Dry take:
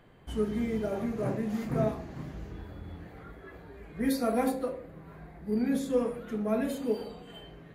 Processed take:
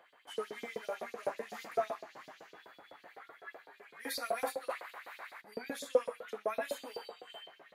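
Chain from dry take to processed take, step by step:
0:04.69–0:05.40: ceiling on every frequency bin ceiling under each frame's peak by 27 dB
auto-filter high-pass saw up 7.9 Hz 480–4,900 Hz
level −2.5 dB

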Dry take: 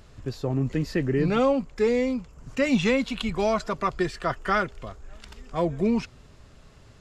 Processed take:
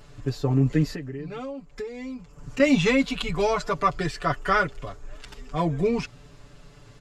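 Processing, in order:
comb filter 6.9 ms, depth 93%
0:00.87–0:02.60: downward compressor 10 to 1, threshold −32 dBFS, peak gain reduction 18.5 dB

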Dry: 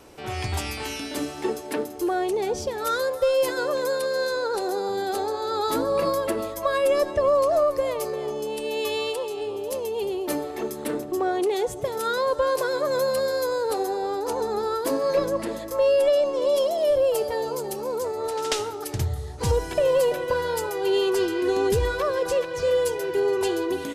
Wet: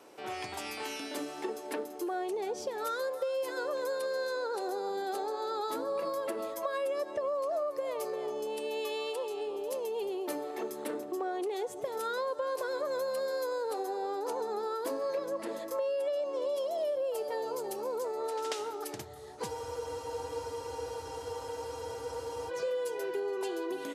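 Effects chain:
downward compressor, threshold −26 dBFS, peak gain reduction 9 dB
high-pass filter 250 Hz 12 dB per octave
parametric band 740 Hz +3.5 dB 2.7 octaves
frozen spectrum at 0:19.51, 2.99 s
level −7.5 dB

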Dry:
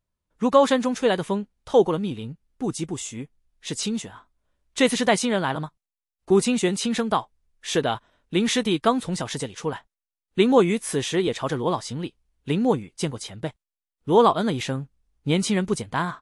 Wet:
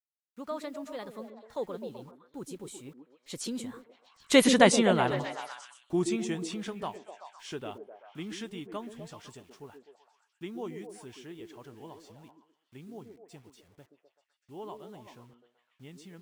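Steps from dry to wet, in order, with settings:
source passing by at 0:04.54, 35 m/s, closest 15 metres
bit reduction 11 bits
echo through a band-pass that steps 127 ms, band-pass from 320 Hz, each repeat 0.7 octaves, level −4 dB

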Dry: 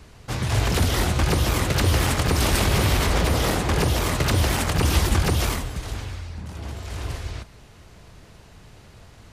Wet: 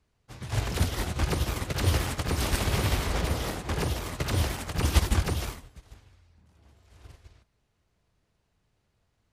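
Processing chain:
expander for the loud parts 2.5 to 1, over −32 dBFS

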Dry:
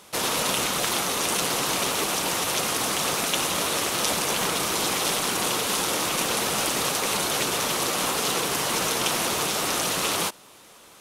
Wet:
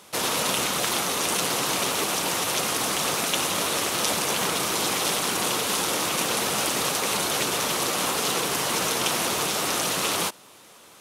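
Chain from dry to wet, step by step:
high-pass filter 70 Hz

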